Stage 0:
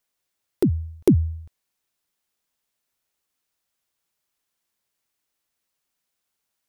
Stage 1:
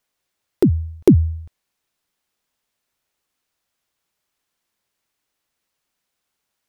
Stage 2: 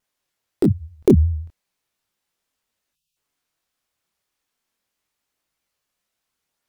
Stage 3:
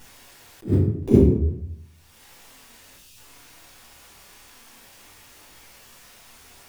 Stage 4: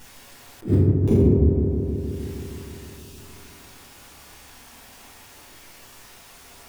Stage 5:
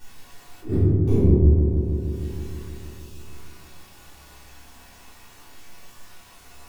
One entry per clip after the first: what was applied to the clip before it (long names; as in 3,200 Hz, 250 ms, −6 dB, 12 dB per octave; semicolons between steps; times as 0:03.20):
high-shelf EQ 6,300 Hz −6 dB; level +5 dB
time-frequency box erased 0:02.93–0:03.16, 200–2,500 Hz; pitch vibrato 5.7 Hz 99 cents; multi-voice chorus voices 2, 0.37 Hz, delay 24 ms, depth 4.9 ms; level +1.5 dB
upward compression, threshold −26 dBFS; convolution reverb RT60 0.75 s, pre-delay 4 ms, DRR −7.5 dB; level that may rise only so fast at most 270 dB per second; level −9 dB
brickwall limiter −11 dBFS, peak gain reduction 9 dB; on a send: delay with a low-pass on its return 156 ms, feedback 76%, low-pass 1,200 Hz, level −5 dB; on the sum: level +2 dB
stylus tracing distortion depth 0.025 ms; rectangular room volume 420 cubic metres, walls furnished, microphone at 3.5 metres; level −8 dB